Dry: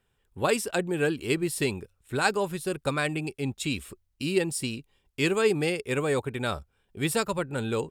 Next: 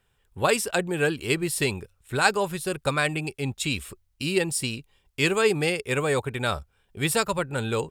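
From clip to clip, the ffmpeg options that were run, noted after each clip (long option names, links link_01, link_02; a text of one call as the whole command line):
ffmpeg -i in.wav -af "equalizer=frequency=280:width=0.97:gain=-5.5,volume=4.5dB" out.wav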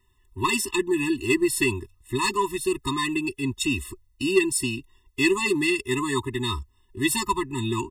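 ffmpeg -i in.wav -af "aecho=1:1:3:0.88,asoftclip=type=tanh:threshold=-11dB,afftfilt=real='re*eq(mod(floor(b*sr/1024/420),2),0)':imag='im*eq(mod(floor(b*sr/1024/420),2),0)':win_size=1024:overlap=0.75,volume=2.5dB" out.wav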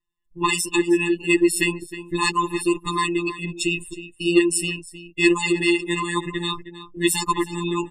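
ffmpeg -i in.wav -filter_complex "[0:a]afftdn=noise_reduction=22:noise_floor=-36,afftfilt=real='hypot(re,im)*cos(PI*b)':imag='0':win_size=1024:overlap=0.75,asplit=2[link_01][link_02];[link_02]adelay=314.9,volume=-13dB,highshelf=frequency=4000:gain=-7.08[link_03];[link_01][link_03]amix=inputs=2:normalize=0,volume=6.5dB" out.wav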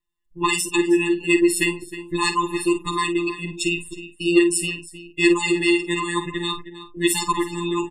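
ffmpeg -i in.wav -filter_complex "[0:a]asplit=2[link_01][link_02];[link_02]adelay=49,volume=-11dB[link_03];[link_01][link_03]amix=inputs=2:normalize=0" out.wav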